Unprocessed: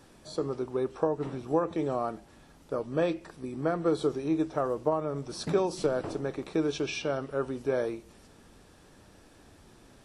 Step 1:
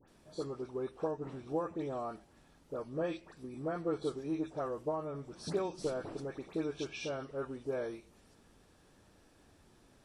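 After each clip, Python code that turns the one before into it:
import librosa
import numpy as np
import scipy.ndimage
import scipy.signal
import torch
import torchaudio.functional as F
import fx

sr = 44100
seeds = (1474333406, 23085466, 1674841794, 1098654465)

y = fx.dispersion(x, sr, late='highs', ms=82.0, hz=1900.0)
y = y * librosa.db_to_amplitude(-8.0)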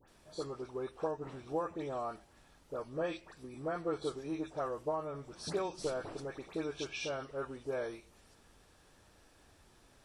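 y = fx.peak_eq(x, sr, hz=220.0, db=-7.0, octaves=2.3)
y = y * librosa.db_to_amplitude(3.0)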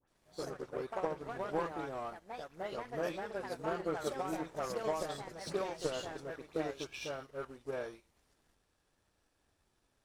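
y = fx.echo_pitch(x, sr, ms=96, semitones=3, count=2, db_per_echo=-3.0)
y = fx.power_curve(y, sr, exponent=1.4)
y = y * librosa.db_to_amplitude(2.0)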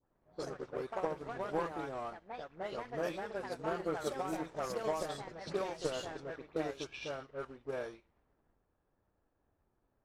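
y = fx.env_lowpass(x, sr, base_hz=1100.0, full_db=-34.5)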